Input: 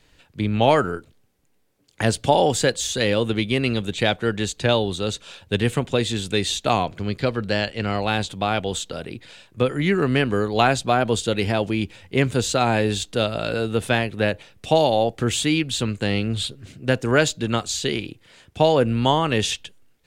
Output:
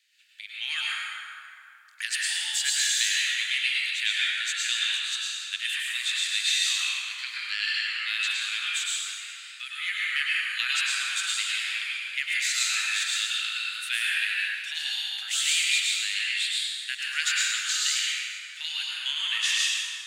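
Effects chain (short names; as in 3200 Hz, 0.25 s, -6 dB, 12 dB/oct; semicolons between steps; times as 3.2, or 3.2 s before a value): steep high-pass 1800 Hz 36 dB/oct; AGC gain up to 4 dB; plate-style reverb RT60 2.9 s, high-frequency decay 0.5×, pre-delay 90 ms, DRR -6.5 dB; gain -6.5 dB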